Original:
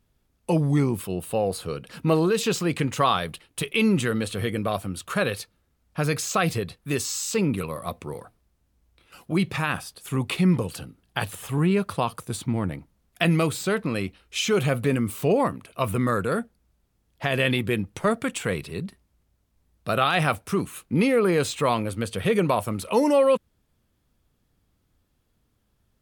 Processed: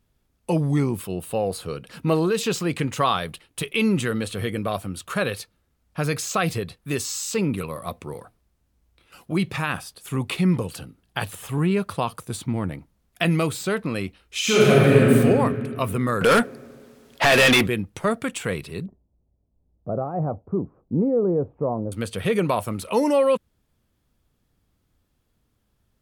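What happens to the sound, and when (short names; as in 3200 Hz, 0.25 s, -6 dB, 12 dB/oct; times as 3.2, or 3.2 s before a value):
14.4–15.13 reverb throw, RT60 2.2 s, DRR -7.5 dB
16.21–17.67 overdrive pedal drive 28 dB, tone 6500 Hz, clips at -8 dBFS
18.86–21.92 inverse Chebyshev low-pass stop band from 4300 Hz, stop band 80 dB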